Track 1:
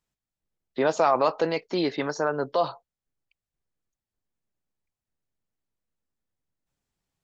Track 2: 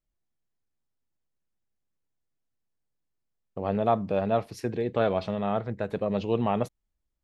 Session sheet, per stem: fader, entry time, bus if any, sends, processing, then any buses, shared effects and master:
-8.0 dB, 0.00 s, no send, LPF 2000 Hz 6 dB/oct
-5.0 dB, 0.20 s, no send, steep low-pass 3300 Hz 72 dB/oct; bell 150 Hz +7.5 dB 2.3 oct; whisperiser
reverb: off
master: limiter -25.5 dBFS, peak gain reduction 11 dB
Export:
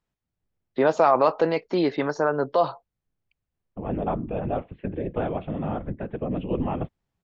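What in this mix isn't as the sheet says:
stem 1 -8.0 dB -> +3.5 dB; master: missing limiter -25.5 dBFS, peak gain reduction 11 dB

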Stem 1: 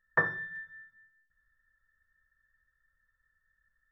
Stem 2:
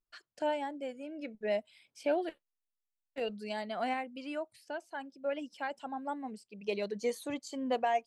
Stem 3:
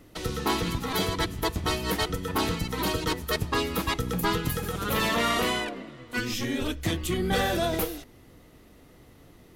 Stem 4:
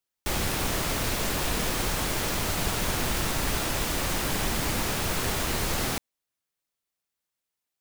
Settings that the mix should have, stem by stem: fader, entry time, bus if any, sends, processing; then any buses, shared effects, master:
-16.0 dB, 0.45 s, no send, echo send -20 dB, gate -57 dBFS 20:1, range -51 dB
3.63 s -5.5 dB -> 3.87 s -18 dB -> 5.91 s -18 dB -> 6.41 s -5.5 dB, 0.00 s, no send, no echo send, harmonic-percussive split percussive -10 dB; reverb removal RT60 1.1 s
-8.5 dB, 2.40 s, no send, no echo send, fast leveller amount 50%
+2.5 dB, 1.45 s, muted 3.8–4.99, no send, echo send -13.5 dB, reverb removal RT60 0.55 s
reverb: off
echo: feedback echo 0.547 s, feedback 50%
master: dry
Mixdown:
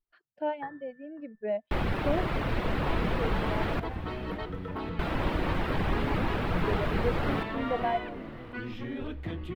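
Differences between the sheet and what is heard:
stem 2 -5.5 dB -> +3.5 dB; master: extra air absorption 480 m

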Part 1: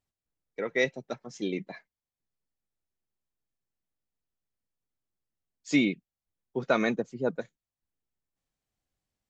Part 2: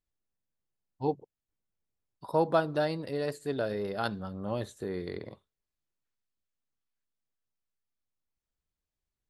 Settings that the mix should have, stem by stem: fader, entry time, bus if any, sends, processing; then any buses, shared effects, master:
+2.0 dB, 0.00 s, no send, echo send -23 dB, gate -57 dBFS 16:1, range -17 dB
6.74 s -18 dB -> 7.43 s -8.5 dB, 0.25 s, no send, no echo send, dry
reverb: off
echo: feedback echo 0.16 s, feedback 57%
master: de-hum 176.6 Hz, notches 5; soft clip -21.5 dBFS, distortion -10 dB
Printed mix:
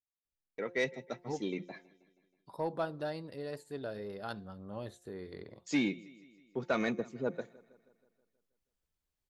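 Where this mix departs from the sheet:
stem 1 +2.0 dB -> -4.5 dB; stem 2 -18.0 dB -> -8.5 dB

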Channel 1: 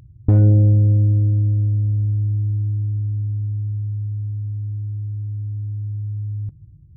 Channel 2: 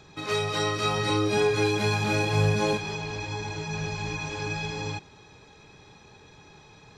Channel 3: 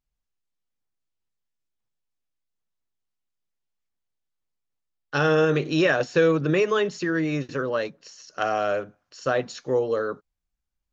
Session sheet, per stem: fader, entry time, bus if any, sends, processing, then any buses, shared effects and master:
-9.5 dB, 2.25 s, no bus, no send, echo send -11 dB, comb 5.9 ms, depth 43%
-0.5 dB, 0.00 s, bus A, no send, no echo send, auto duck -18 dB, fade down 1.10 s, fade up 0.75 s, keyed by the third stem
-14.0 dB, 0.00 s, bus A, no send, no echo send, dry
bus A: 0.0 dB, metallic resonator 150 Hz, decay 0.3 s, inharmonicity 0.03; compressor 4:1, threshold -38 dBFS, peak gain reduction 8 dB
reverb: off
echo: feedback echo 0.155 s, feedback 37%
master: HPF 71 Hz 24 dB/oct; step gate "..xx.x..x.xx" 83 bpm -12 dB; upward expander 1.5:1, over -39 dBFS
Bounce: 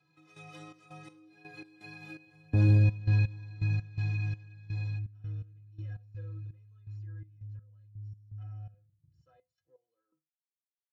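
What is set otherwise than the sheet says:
stem 1: missing comb 5.9 ms, depth 43%; stem 2 -0.5 dB -> +11.5 dB; stem 3 -14.0 dB -> -22.0 dB

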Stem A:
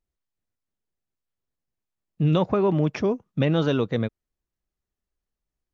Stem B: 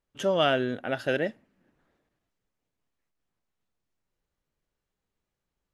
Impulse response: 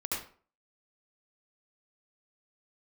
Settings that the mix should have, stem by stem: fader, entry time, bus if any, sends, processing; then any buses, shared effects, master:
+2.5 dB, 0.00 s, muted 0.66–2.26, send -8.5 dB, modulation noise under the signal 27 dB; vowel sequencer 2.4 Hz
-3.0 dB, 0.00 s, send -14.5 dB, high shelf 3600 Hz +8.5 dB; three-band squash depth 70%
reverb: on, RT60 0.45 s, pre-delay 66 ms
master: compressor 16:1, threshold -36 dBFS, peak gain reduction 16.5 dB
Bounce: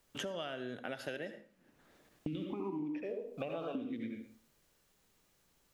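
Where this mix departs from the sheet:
stem A: send -8.5 dB -> -1.5 dB; stem B -3.0 dB -> -11.5 dB

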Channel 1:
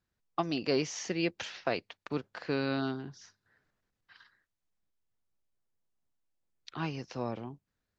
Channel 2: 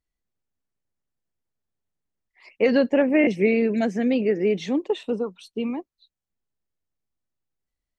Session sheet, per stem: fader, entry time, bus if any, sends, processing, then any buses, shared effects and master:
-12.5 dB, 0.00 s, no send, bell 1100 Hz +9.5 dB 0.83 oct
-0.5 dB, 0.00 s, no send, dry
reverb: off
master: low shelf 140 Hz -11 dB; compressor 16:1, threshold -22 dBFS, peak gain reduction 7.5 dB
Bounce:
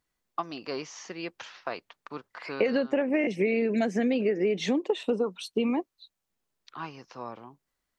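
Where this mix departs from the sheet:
stem 1 -12.5 dB -> -5.0 dB; stem 2 -0.5 dB -> +7.0 dB

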